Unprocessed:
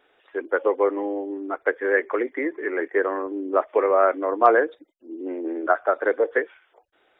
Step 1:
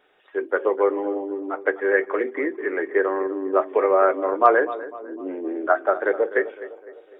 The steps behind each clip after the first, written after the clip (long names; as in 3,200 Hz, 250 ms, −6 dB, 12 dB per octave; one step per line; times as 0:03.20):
tape delay 252 ms, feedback 57%, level −13 dB, low-pass 1,300 Hz
on a send at −9 dB: convolution reverb RT60 0.15 s, pre-delay 3 ms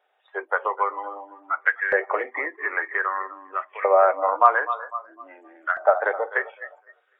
noise reduction from a noise print of the clip's start 15 dB
downward compressor 2 to 1, threshold −27 dBFS, peak gain reduction 10 dB
auto-filter high-pass saw up 0.52 Hz 650–1,900 Hz
level +5 dB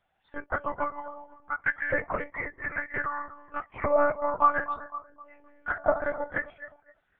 one-pitch LPC vocoder at 8 kHz 290 Hz
level −6 dB